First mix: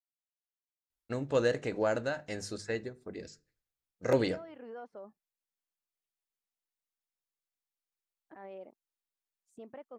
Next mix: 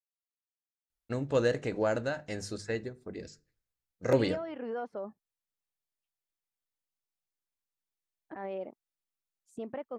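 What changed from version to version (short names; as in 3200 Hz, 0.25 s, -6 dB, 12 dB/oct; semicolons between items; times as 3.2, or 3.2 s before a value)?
second voice +8.0 dB; master: add low shelf 210 Hz +4.5 dB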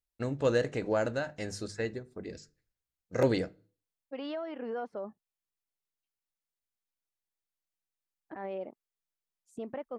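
first voice: entry -0.90 s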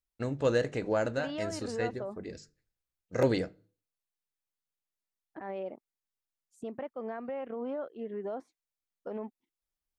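second voice: entry -2.95 s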